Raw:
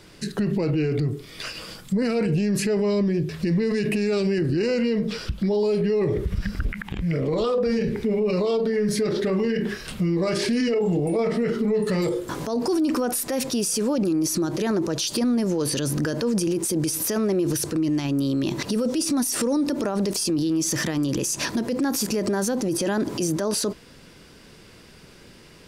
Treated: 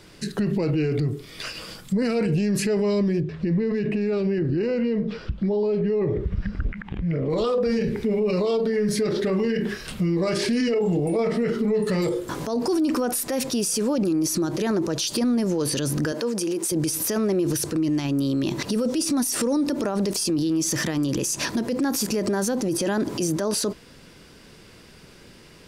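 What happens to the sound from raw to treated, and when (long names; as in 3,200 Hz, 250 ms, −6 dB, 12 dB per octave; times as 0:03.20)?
0:03.20–0:07.30: head-to-tape spacing loss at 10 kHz 26 dB
0:16.12–0:16.72: high-pass filter 280 Hz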